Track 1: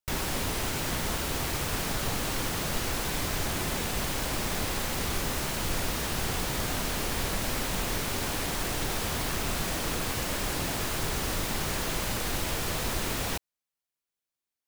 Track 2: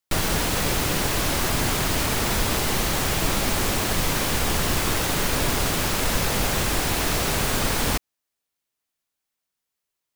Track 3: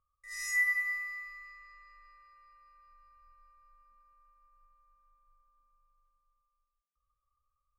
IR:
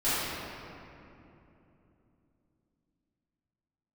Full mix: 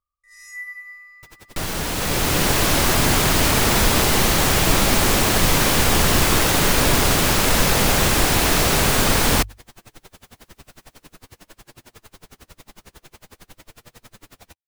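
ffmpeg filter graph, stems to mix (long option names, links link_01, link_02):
-filter_complex "[0:a]flanger=delay=8.3:depth=6.5:regen=29:speed=0.47:shape=sinusoidal,aeval=exprs='val(0)*pow(10,-32*(0.5-0.5*cos(2*PI*11*n/s))/20)':channel_layout=same,adelay=1150,volume=-7dB[link_01];[1:a]bandreject=frequency=50:width_type=h:width=6,bandreject=frequency=100:width_type=h:width=6,dynaudnorm=framelen=130:gausssize=11:maxgain=16dB,adelay=1450,volume=-3dB[link_02];[2:a]volume=-5.5dB[link_03];[link_01][link_02][link_03]amix=inputs=3:normalize=0"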